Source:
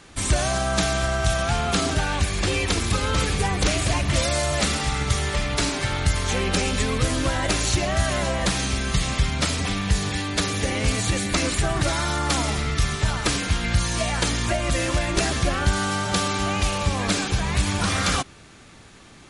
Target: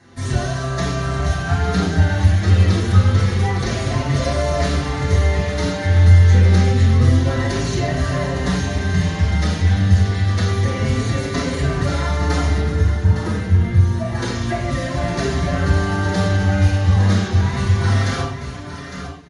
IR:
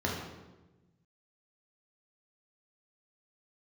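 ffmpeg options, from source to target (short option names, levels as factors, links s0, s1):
-filter_complex "[0:a]asettb=1/sr,asplit=3[s0][s1][s2];[s0]atrim=end=12.614[s3];[s1]atrim=start=12.61:end=14.15,asetpts=PTS-STARTPTS,afade=t=in:d=0.004:c=qsin,afade=t=out:st=1.536:d=0.004:c=qsin,equalizer=f=4400:t=o:w=2.7:g=-11[s4];[s2]atrim=start=14.146[s5];[s3][s4]acrossfade=d=0.004:c1=hsin:c2=qsin[s6];[s6][s5]acrossfade=d=0.004:c1=qsin:c2=hsin,aecho=1:1:350|859:0.188|0.335[s7];[1:a]atrim=start_sample=2205,afade=t=out:st=0.18:d=0.01,atrim=end_sample=8379[s8];[s7][s8]afir=irnorm=-1:irlink=0,asplit=2[s9][s10];[s10]adelay=5.6,afreqshift=0.28[s11];[s9][s11]amix=inputs=2:normalize=1,volume=0.562"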